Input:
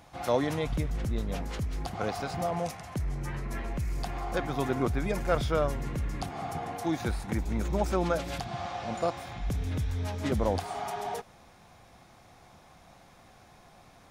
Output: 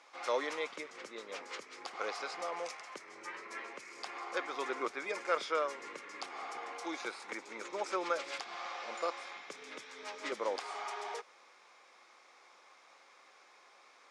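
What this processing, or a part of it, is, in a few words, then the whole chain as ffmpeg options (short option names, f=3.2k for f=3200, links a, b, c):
phone speaker on a table: -filter_complex "[0:a]highpass=f=410:w=0.5412,highpass=f=410:w=1.3066,equalizer=f=700:t=q:w=4:g=-10,equalizer=f=1.2k:t=q:w=4:g=5,equalizer=f=2.2k:t=q:w=4:g=6,equalizer=f=5k:t=q:w=4:g=3,lowpass=f=8.2k:w=0.5412,lowpass=f=8.2k:w=1.3066,asettb=1/sr,asplit=3[a][b][c];[a]atrim=end=6.754[d];[b]atrim=start=6.75:end=7.22,asetpts=PTS-STARTPTS,afade=t=in:d=0.004:c=qsin,afade=t=out:st=0.466:d=0.004:c=qsin,bandreject=f=1.8k:w=11[e];[c]atrim=start=7.216[f];[d][e]acrossfade=d=0.004:c1=hsin:c2=qsin[g];[g][f]acrossfade=d=0.004:c1=qsin:c2=hsin,volume=-3.5dB"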